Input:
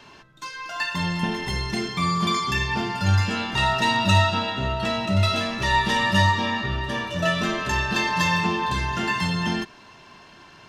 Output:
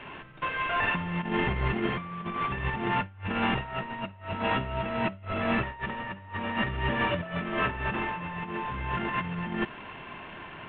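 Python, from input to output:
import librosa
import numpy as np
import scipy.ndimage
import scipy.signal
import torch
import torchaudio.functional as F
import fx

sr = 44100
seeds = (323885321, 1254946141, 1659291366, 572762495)

y = fx.cvsd(x, sr, bps=16000)
y = fx.over_compress(y, sr, threshold_db=-30.0, ratio=-0.5)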